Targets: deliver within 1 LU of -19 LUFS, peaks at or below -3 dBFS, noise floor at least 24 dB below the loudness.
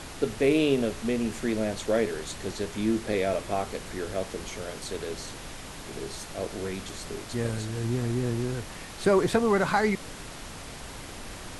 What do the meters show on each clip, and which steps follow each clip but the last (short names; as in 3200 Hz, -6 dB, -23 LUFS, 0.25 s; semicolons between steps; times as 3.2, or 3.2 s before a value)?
noise floor -41 dBFS; noise floor target -53 dBFS; loudness -29.0 LUFS; peak -10.5 dBFS; loudness target -19.0 LUFS
-> noise print and reduce 12 dB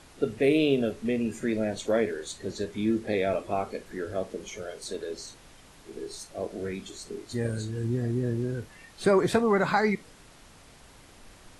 noise floor -53 dBFS; loudness -29.0 LUFS; peak -10.5 dBFS; loudness target -19.0 LUFS
-> gain +10 dB; limiter -3 dBFS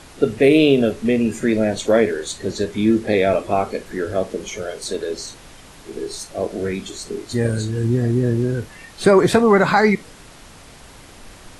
loudness -19.0 LUFS; peak -3.0 dBFS; noise floor -43 dBFS